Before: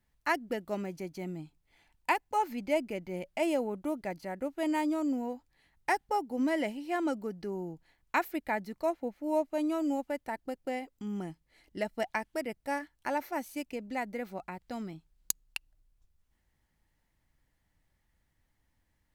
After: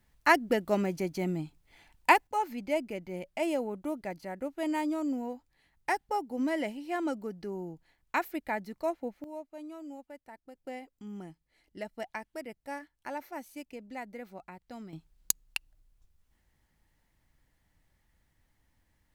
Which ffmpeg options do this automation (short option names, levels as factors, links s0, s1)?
-af "asetnsamples=n=441:p=0,asendcmd='2.27 volume volume -1dB;9.24 volume volume -13dB;10.55 volume volume -6dB;14.93 volume volume 3.5dB',volume=2.24"